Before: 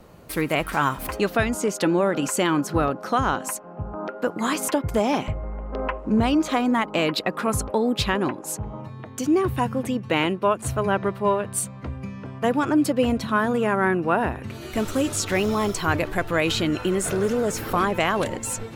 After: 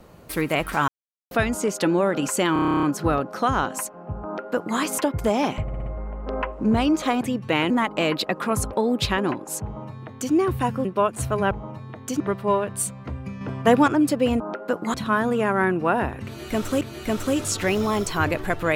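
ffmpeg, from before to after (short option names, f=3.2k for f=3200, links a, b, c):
-filter_complex "[0:a]asplit=27[a][b][c][d][e][f][g][h][i][j][k][l][m][n][o][p][q][r][s][t][u][v][w][x][y][z][aa];[a]atrim=end=0.88,asetpts=PTS-STARTPTS,afade=t=out:st=0.876:d=0.004:c=hsin[ab];[b]atrim=start=0.88:end=1.31,asetpts=PTS-STARTPTS,volume=0[ac];[c]atrim=start=1.31:end=2.562,asetpts=PTS-STARTPTS,afade=t=in:d=0.004:c=hsin[ad];[d]atrim=start=2.528:end=2.562[ae];[e]atrim=start=2.528:end=2.562[af];[f]atrim=start=2.528:end=2.562[ag];[g]atrim=start=2.528:end=2.562[ah];[h]atrim=start=2.528:end=2.562[ai];[i]atrim=start=2.528:end=2.562[aj];[j]atrim=start=2.528:end=2.562[ak];[k]atrim=start=2.528:end=2.562[al];[l]atrim=start=2.528:end=2.562[am];[m]atrim=start=2.528:end=5.382[an];[n]atrim=start=5.318:end=5.382[ao];[o]atrim=start=5.318:end=5.382[ap];[p]atrim=start=5.318:end=5.382[aq];[q]atrim=start=5.318:end=6.672[ar];[r]atrim=start=9.818:end=10.312[as];[s]atrim=start=6.668:end=9.822[at];[t]atrim=start=10.308:end=10.972[au];[u]atrim=start=8.608:end=9.302[av];[v]atrim=start=10.968:end=12.182[aw];[w]atrim=start=12.178:end=12.652,asetpts=PTS-STARTPTS,volume=5.5dB[ax];[x]atrim=start=12.648:end=13.172[ay];[y]atrim=start=3.938:end=4.482[az];[z]atrim=start=13.168:end=15.042[ba];[aa]atrim=start=14.488[bb];[ab][ac][ad]concat=n=3:v=0:a=1[bc];[bc][ae]acrossfade=d=0.004:c1=hsin:c2=hsin[bd];[bd][af]acrossfade=d=0.004:c1=hsin:c2=hsin[be];[be][ag]acrossfade=d=0.004:c1=hsin:c2=hsin[bf];[bf][ah]acrossfade=d=0.004:c1=hsin:c2=hsin[bg];[bg][ai]acrossfade=d=0.004:c1=hsin:c2=hsin[bh];[bh][aj]acrossfade=d=0.004:c1=hsin:c2=hsin[bi];[bi][ak]acrossfade=d=0.004:c1=hsin:c2=hsin[bj];[bj][al]acrossfade=d=0.004:c1=hsin:c2=hsin[bk];[bk][am]acrossfade=d=0.004:c1=hsin:c2=hsin[bl];[bl][an]acrossfade=d=0.004:c1=hsin:c2=hsin[bm];[bm][ao]acrossfade=d=0.004:c1=hsin:c2=hsin[bn];[bn][ap]acrossfade=d=0.004:c1=hsin:c2=hsin[bo];[bo][aq]acrossfade=d=0.004:c1=hsin:c2=hsin[bp];[bp][ar]acrossfade=d=0.004:c1=hsin:c2=hsin[bq];[bq][as]acrossfade=d=0.004:c1=hsin:c2=hsin[br];[br][at]acrossfade=d=0.004:c1=hsin:c2=hsin[bs];[bs][au]acrossfade=d=0.004:c1=hsin:c2=hsin[bt];[bt][av]acrossfade=d=0.004:c1=hsin:c2=hsin[bu];[bu][aw]acrossfade=d=0.004:c1=hsin:c2=hsin[bv];[bv][ax]acrossfade=d=0.004:c1=hsin:c2=hsin[bw];[bw][ay]acrossfade=d=0.004:c1=hsin:c2=hsin[bx];[bx][az]acrossfade=d=0.004:c1=hsin:c2=hsin[by];[by][ba]acrossfade=d=0.004:c1=hsin:c2=hsin[bz];[bz][bb]acrossfade=d=0.004:c1=hsin:c2=hsin"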